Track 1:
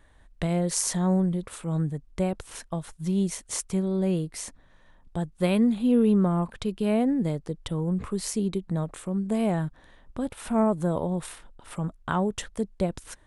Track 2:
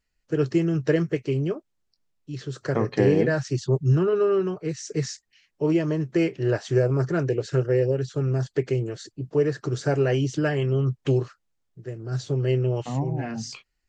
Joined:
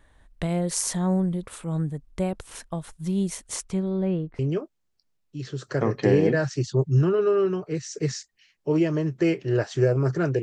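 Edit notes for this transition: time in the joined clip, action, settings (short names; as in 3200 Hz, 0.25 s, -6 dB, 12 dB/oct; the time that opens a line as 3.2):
track 1
3.55–4.39 LPF 9700 Hz -> 1300 Hz
4.39 switch to track 2 from 1.33 s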